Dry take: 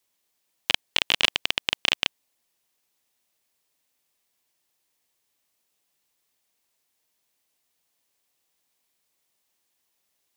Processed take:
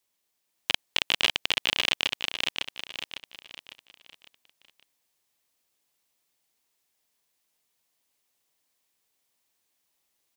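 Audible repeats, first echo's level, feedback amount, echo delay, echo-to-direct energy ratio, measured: 4, -3.0 dB, 39%, 553 ms, -2.5 dB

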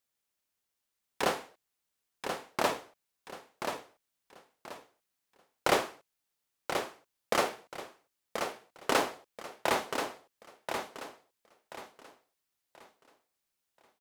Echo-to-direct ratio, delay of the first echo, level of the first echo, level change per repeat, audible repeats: -6.0 dB, 1032 ms, -6.5 dB, -10.5 dB, 3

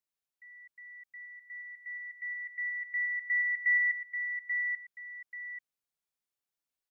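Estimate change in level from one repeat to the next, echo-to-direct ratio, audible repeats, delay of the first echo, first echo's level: -10.5 dB, -5.5 dB, 2, 836 ms, -6.0 dB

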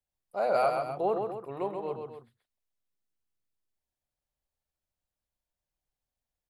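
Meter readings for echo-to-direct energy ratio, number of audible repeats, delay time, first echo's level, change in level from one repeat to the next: -4.0 dB, 2, 132 ms, -5.0 dB, -6.5 dB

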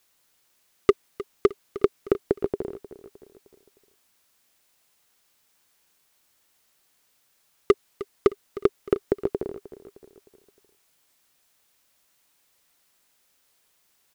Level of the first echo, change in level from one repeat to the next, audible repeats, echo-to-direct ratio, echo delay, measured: -16.0 dB, -6.5 dB, 3, -15.0 dB, 308 ms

